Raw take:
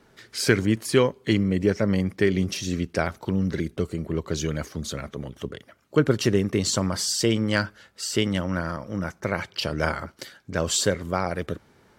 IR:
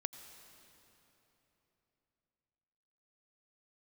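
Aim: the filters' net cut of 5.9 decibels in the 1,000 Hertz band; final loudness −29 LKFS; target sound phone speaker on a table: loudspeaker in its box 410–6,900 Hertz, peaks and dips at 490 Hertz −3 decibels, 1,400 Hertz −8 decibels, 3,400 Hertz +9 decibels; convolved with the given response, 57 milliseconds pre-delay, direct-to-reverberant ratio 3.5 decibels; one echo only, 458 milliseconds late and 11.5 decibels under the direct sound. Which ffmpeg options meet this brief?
-filter_complex "[0:a]equalizer=frequency=1000:width_type=o:gain=-5,aecho=1:1:458:0.266,asplit=2[link_01][link_02];[1:a]atrim=start_sample=2205,adelay=57[link_03];[link_02][link_03]afir=irnorm=-1:irlink=0,volume=-2.5dB[link_04];[link_01][link_04]amix=inputs=2:normalize=0,highpass=frequency=410:width=0.5412,highpass=frequency=410:width=1.3066,equalizer=frequency=490:width_type=q:width=4:gain=-3,equalizer=frequency=1400:width_type=q:width=4:gain=-8,equalizer=frequency=3400:width_type=q:width=4:gain=9,lowpass=frequency=6900:width=0.5412,lowpass=frequency=6900:width=1.3066,volume=-1dB"

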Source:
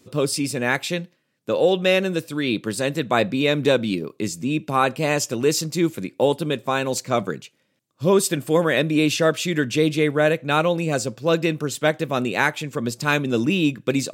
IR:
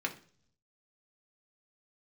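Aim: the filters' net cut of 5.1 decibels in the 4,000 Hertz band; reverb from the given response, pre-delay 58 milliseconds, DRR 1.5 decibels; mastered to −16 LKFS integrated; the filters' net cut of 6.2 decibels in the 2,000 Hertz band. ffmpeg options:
-filter_complex "[0:a]equalizer=frequency=2000:width_type=o:gain=-7.5,equalizer=frequency=4000:width_type=o:gain=-4,asplit=2[link_01][link_02];[1:a]atrim=start_sample=2205,adelay=58[link_03];[link_02][link_03]afir=irnorm=-1:irlink=0,volume=-6dB[link_04];[link_01][link_04]amix=inputs=2:normalize=0,volume=5dB"

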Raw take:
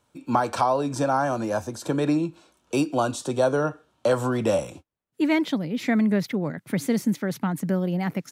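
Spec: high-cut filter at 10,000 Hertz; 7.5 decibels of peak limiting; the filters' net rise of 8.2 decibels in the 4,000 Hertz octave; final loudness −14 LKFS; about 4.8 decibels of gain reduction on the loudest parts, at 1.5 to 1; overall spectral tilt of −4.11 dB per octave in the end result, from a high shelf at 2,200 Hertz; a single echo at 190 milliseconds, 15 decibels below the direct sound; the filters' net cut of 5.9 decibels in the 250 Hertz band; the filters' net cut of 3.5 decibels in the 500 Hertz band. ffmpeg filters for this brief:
ffmpeg -i in.wav -af "lowpass=10000,equalizer=frequency=250:width_type=o:gain=-7,equalizer=frequency=500:width_type=o:gain=-3,highshelf=frequency=2200:gain=3.5,equalizer=frequency=4000:width_type=o:gain=7,acompressor=threshold=-31dB:ratio=1.5,alimiter=limit=-21dB:level=0:latency=1,aecho=1:1:190:0.178,volume=18dB" out.wav

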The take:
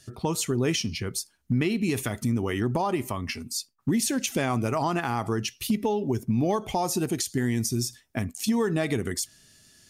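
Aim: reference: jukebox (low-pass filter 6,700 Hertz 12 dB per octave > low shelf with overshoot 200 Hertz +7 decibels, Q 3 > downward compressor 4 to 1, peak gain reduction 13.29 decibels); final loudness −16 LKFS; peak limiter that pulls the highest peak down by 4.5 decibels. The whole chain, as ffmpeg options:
ffmpeg -i in.wav -af "alimiter=limit=-19.5dB:level=0:latency=1,lowpass=6700,lowshelf=frequency=200:width_type=q:width=3:gain=7,acompressor=threshold=-30dB:ratio=4,volume=17.5dB" out.wav

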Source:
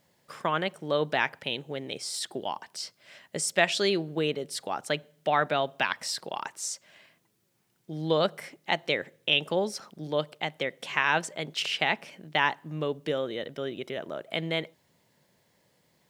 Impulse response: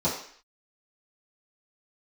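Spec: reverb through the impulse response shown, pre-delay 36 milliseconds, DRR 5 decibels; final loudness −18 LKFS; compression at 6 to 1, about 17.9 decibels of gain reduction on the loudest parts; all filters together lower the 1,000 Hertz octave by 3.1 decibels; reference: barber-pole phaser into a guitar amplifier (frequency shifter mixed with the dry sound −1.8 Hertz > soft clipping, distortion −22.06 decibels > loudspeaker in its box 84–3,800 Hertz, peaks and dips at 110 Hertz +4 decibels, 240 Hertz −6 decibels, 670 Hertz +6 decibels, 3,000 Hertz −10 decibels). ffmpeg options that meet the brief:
-filter_complex "[0:a]equalizer=frequency=1000:width_type=o:gain=-7.5,acompressor=threshold=-39dB:ratio=6,asplit=2[link_01][link_02];[1:a]atrim=start_sample=2205,adelay=36[link_03];[link_02][link_03]afir=irnorm=-1:irlink=0,volume=-16.5dB[link_04];[link_01][link_04]amix=inputs=2:normalize=0,asplit=2[link_05][link_06];[link_06]afreqshift=-1.8[link_07];[link_05][link_07]amix=inputs=2:normalize=1,asoftclip=threshold=-30.5dB,highpass=84,equalizer=frequency=110:width_type=q:width=4:gain=4,equalizer=frequency=240:width_type=q:width=4:gain=-6,equalizer=frequency=670:width_type=q:width=4:gain=6,equalizer=frequency=3000:width_type=q:width=4:gain=-10,lowpass=frequency=3800:width=0.5412,lowpass=frequency=3800:width=1.3066,volume=27.5dB"

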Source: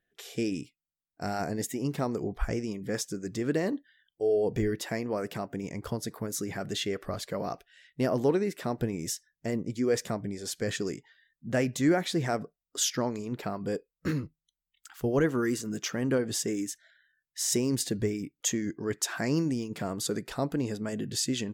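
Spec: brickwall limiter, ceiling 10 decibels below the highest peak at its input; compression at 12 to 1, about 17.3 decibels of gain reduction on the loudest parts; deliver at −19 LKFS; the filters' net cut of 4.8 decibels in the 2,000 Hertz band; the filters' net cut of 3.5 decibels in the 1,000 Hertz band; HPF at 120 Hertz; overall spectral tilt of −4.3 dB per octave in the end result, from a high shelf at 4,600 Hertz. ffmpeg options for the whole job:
ffmpeg -i in.wav -af "highpass=120,equalizer=frequency=1000:width_type=o:gain=-4.5,equalizer=frequency=2000:width_type=o:gain=-5,highshelf=frequency=4600:gain=3,acompressor=threshold=-39dB:ratio=12,volume=27dB,alimiter=limit=-8dB:level=0:latency=1" out.wav

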